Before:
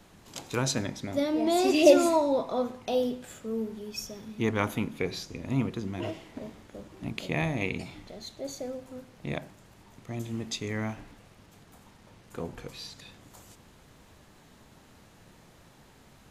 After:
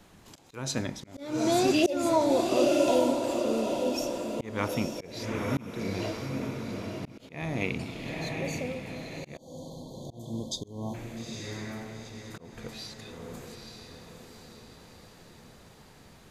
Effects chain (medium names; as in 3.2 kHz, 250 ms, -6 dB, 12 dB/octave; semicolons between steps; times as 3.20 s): echo that smears into a reverb 882 ms, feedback 50%, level -4.5 dB; slow attack 279 ms; spectral selection erased 9.37–10.94 s, 1.1–3.1 kHz